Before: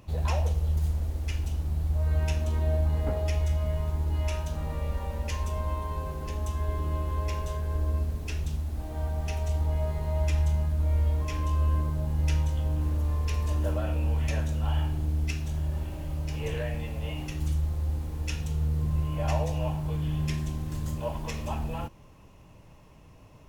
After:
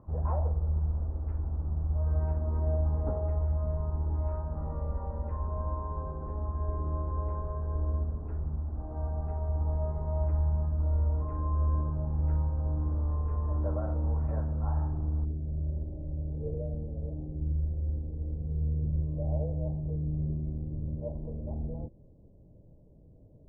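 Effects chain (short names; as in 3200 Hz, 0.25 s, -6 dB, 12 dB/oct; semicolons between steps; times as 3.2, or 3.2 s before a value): steep low-pass 1300 Hz 36 dB/oct, from 15.24 s 600 Hz; gain -2.5 dB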